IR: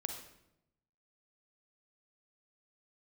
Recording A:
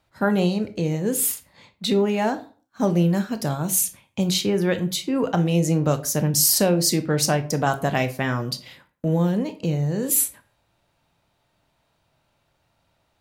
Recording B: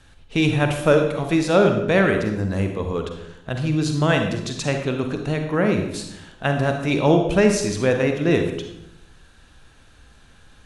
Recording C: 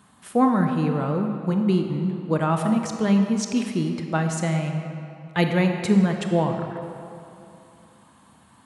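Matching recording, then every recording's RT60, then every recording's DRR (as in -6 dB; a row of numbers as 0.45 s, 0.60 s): B; 0.45 s, 0.85 s, 2.8 s; 9.5 dB, 4.5 dB, 4.5 dB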